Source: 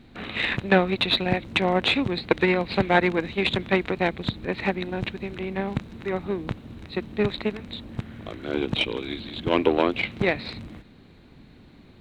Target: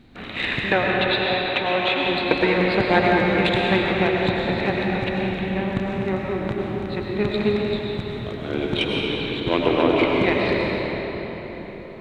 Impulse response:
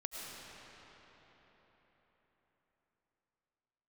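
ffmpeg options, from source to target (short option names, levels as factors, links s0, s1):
-filter_complex "[0:a]asettb=1/sr,asplit=3[s0][s1][s2];[s0]atrim=end=0.724[s3];[s1]atrim=start=0.72:end=2.08,asetpts=PTS-STARTPTS,afade=t=in:d=0.004:c=qsin,afade=t=out:st=1.356:d=0.004:c=qsin,acrossover=split=360 4100:gain=0.224 1 0.141[s4][s5][s6];[s4][s5][s6]amix=inputs=3:normalize=0[s7];[s2]atrim=start=2.076[s8];[s3][s7]acrossfade=d=0.004:c1=hsin:c2=qsin[s9];[s9][s8]acrossfade=d=0.004:c1=qsin:c2=hsin[s10];[1:a]atrim=start_sample=2205[s11];[s10][s11]afir=irnorm=-1:irlink=0,volume=1.58"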